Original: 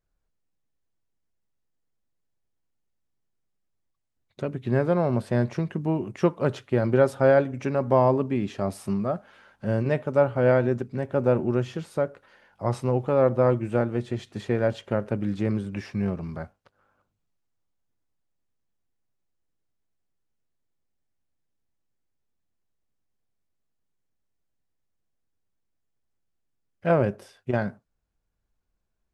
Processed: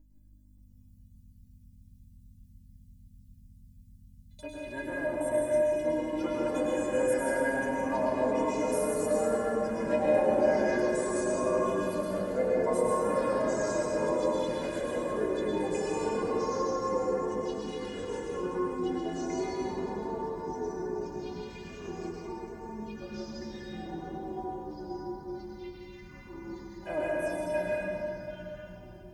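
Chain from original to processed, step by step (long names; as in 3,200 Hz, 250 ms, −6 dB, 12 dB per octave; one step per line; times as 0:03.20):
RIAA equalisation recording
phaser swept by the level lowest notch 210 Hz, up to 4,600 Hz, full sweep at −29.5 dBFS
mains hum 50 Hz, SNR 14 dB
stiff-string resonator 300 Hz, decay 0.25 s, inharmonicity 0.008
delay with pitch and tempo change per echo 573 ms, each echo −3 semitones, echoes 3
Butterworth band-reject 1,300 Hz, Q 7.4
convolution reverb RT60 3.1 s, pre-delay 97 ms, DRR −5 dB
level +6.5 dB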